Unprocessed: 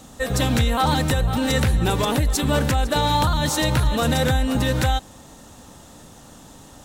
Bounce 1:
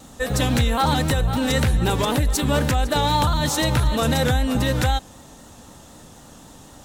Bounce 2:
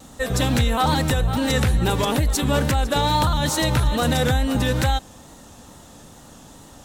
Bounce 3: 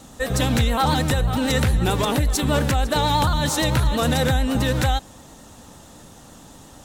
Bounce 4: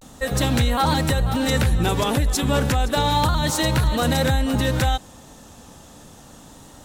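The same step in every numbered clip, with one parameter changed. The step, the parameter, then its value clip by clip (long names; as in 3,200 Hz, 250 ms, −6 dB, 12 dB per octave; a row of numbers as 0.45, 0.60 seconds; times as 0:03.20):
pitch vibrato, speed: 3.9, 2.3, 8.9, 0.31 Hertz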